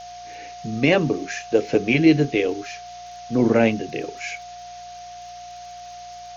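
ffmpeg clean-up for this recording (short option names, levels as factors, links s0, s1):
-af "adeclick=t=4,bandreject=f=59.2:t=h:w=4,bandreject=f=118.4:t=h:w=4,bandreject=f=177.6:t=h:w=4,bandreject=f=710:w=30,afftdn=nr=27:nf=-39"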